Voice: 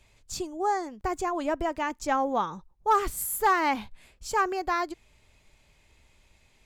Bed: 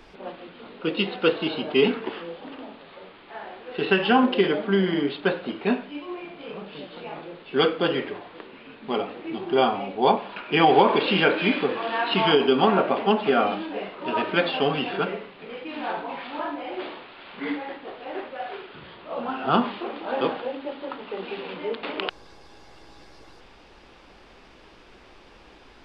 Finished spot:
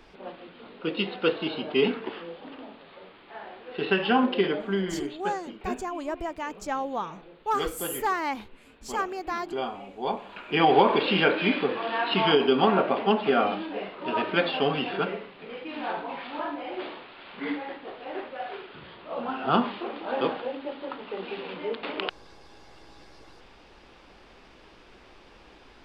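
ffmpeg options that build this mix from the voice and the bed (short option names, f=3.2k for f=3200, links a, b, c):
-filter_complex "[0:a]adelay=4600,volume=-4dB[a];[1:a]volume=5.5dB,afade=t=out:st=4.44:d=0.75:silence=0.421697,afade=t=in:st=10.04:d=0.71:silence=0.354813[b];[a][b]amix=inputs=2:normalize=0"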